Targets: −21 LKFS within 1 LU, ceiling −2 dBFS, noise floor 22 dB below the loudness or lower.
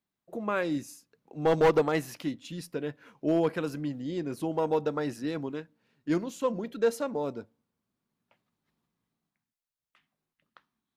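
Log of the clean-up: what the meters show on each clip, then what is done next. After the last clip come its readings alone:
share of clipped samples 0.3%; peaks flattened at −17.0 dBFS; integrated loudness −30.5 LKFS; sample peak −17.0 dBFS; target loudness −21.0 LKFS
→ clipped peaks rebuilt −17 dBFS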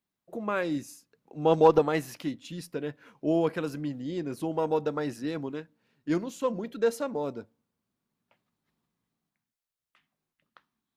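share of clipped samples 0.0%; integrated loudness −29.5 LKFS; sample peak −8.0 dBFS; target loudness −21.0 LKFS
→ level +8.5 dB
brickwall limiter −2 dBFS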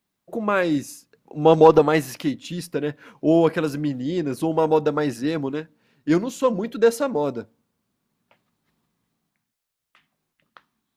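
integrated loudness −21.5 LKFS; sample peak −2.0 dBFS; background noise floor −80 dBFS

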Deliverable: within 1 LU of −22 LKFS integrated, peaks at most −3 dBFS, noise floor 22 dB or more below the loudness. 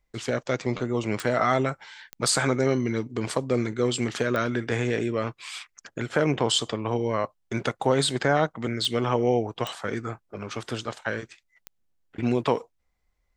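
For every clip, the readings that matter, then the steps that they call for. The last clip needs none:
number of clicks 6; integrated loudness −26.5 LKFS; sample peak −8.5 dBFS; target loudness −22.0 LKFS
→ click removal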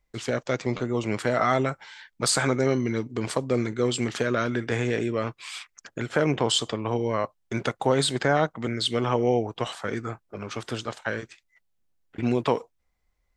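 number of clicks 0; integrated loudness −26.5 LKFS; sample peak −8.5 dBFS; target loudness −22.0 LKFS
→ level +4.5 dB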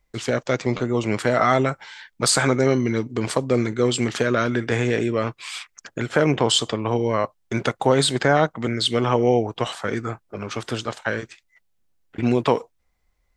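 integrated loudness −22.0 LKFS; sample peak −4.0 dBFS; background noise floor −69 dBFS

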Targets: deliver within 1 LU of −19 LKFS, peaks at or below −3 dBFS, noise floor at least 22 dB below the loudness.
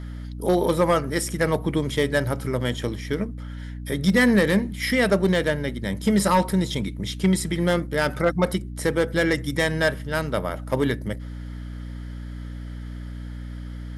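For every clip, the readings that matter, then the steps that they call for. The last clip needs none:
share of clipped samples 0.3%; peaks flattened at −11.5 dBFS; mains hum 60 Hz; hum harmonics up to 300 Hz; level of the hum −31 dBFS; integrated loudness −23.0 LKFS; sample peak −11.5 dBFS; target loudness −19.0 LKFS
→ clipped peaks rebuilt −11.5 dBFS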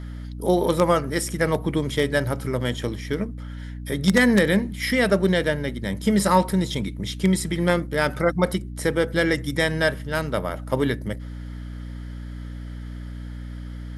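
share of clipped samples 0.0%; mains hum 60 Hz; hum harmonics up to 300 Hz; level of the hum −31 dBFS
→ mains-hum notches 60/120/180/240/300 Hz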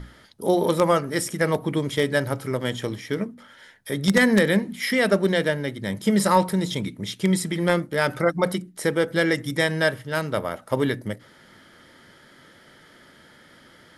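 mains hum none found; integrated loudness −23.5 LKFS; sample peak −3.0 dBFS; target loudness −19.0 LKFS
→ level +4.5 dB
brickwall limiter −3 dBFS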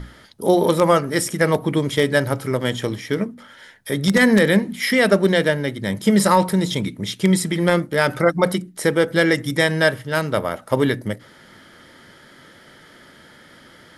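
integrated loudness −19.0 LKFS; sample peak −3.0 dBFS; background noise floor −48 dBFS

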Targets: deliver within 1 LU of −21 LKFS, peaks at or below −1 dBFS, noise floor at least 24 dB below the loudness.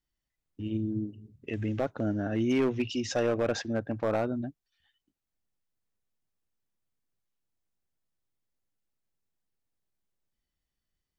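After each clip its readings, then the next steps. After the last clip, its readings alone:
share of clipped samples 0.4%; peaks flattened at −20.5 dBFS; integrated loudness −31.0 LKFS; sample peak −20.5 dBFS; target loudness −21.0 LKFS
→ clipped peaks rebuilt −20.5 dBFS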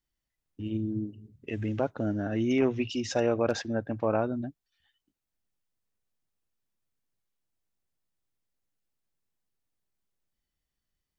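share of clipped samples 0.0%; integrated loudness −30.0 LKFS; sample peak −13.0 dBFS; target loudness −21.0 LKFS
→ level +9 dB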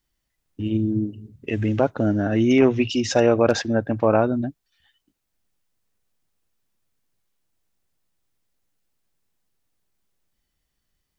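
integrated loudness −21.0 LKFS; sample peak −4.0 dBFS; background noise floor −77 dBFS

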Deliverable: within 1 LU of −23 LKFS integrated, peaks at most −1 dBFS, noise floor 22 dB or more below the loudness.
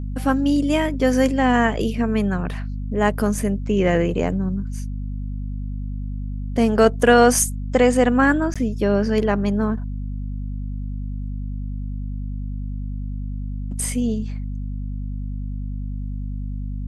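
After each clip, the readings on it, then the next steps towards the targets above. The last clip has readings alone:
number of dropouts 1; longest dropout 16 ms; mains hum 50 Hz; hum harmonics up to 250 Hz; level of the hum −25 dBFS; integrated loudness −22.0 LKFS; sample peak −2.0 dBFS; target loudness −23.0 LKFS
→ repair the gap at 0:08.54, 16 ms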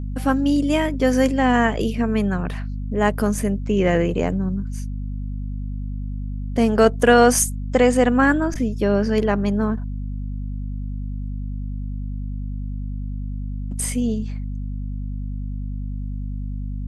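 number of dropouts 0; mains hum 50 Hz; hum harmonics up to 250 Hz; level of the hum −25 dBFS
→ mains-hum notches 50/100/150/200/250 Hz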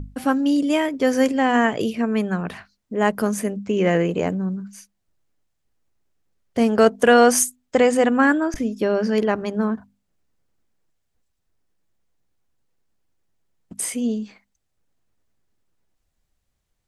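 mains hum none found; integrated loudness −20.0 LKFS; sample peak −3.0 dBFS; target loudness −23.0 LKFS
→ level −3 dB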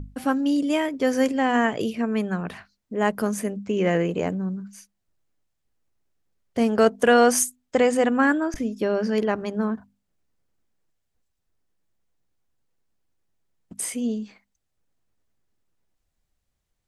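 integrated loudness −23.0 LKFS; sample peak −6.0 dBFS; background noise floor −77 dBFS

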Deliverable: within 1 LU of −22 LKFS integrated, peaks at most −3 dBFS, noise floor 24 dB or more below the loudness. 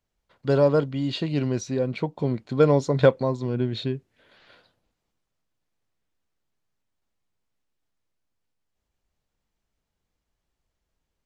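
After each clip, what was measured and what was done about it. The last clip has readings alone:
integrated loudness −24.0 LKFS; sample peak −4.0 dBFS; target loudness −22.0 LKFS
→ level +2 dB
brickwall limiter −3 dBFS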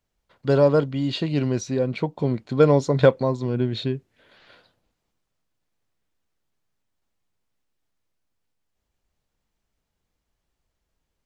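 integrated loudness −22.0 LKFS; sample peak −3.0 dBFS; background noise floor −80 dBFS

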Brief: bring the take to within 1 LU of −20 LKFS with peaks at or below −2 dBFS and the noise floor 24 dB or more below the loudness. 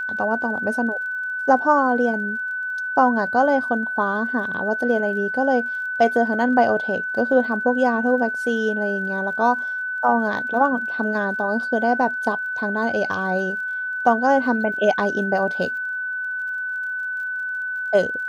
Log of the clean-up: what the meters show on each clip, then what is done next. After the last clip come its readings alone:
crackle rate 39 per second; interfering tone 1,500 Hz; level of the tone −24 dBFS; integrated loudness −21.0 LKFS; sample peak −2.5 dBFS; target loudness −20.0 LKFS
→ click removal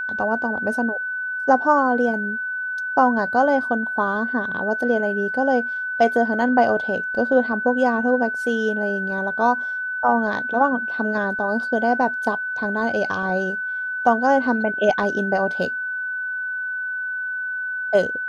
crackle rate 0.055 per second; interfering tone 1,500 Hz; level of the tone −24 dBFS
→ notch filter 1,500 Hz, Q 30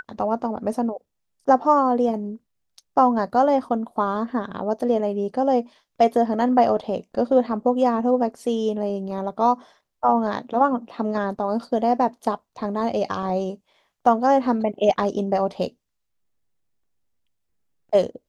interfering tone none found; integrated loudness −22.5 LKFS; sample peak −3.5 dBFS; target loudness −20.0 LKFS
→ level +2.5 dB
brickwall limiter −2 dBFS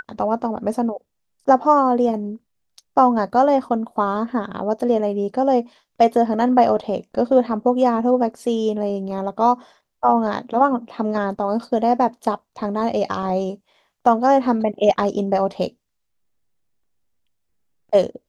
integrated loudness −20.0 LKFS; sample peak −2.0 dBFS; background noise floor −74 dBFS

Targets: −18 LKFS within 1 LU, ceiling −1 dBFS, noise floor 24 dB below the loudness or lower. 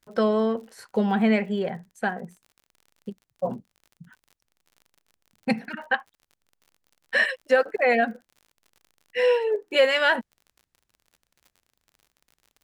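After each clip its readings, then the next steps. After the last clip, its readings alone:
crackle rate 48 per second; integrated loudness −24.5 LKFS; sample peak −8.5 dBFS; target loudness −18.0 LKFS
→ click removal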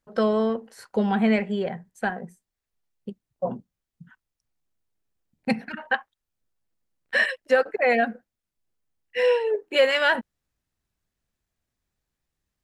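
crackle rate 0 per second; integrated loudness −24.5 LKFS; sample peak −8.5 dBFS; target loudness −18.0 LKFS
→ level +6.5 dB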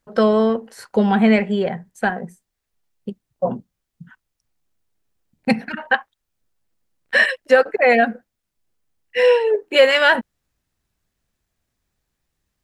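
integrated loudness −18.0 LKFS; sample peak −2.0 dBFS; background noise floor −79 dBFS

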